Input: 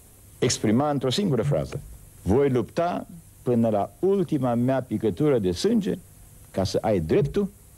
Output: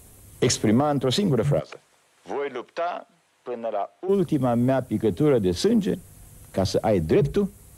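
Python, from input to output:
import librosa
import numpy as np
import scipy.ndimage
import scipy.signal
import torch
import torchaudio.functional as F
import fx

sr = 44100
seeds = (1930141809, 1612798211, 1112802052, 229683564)

y = fx.bandpass_edges(x, sr, low_hz=700.0, high_hz=fx.line((1.59, 5100.0), (4.08, 3200.0)), at=(1.59, 4.08), fade=0.02)
y = F.gain(torch.from_numpy(y), 1.5).numpy()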